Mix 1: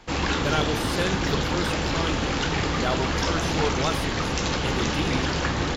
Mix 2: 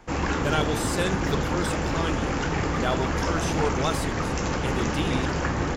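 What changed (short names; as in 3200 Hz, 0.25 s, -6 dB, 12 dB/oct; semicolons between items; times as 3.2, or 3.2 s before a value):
speech: add bell 7500 Hz +15 dB 0.31 oct; background: add bell 3800 Hz -11.5 dB 1 oct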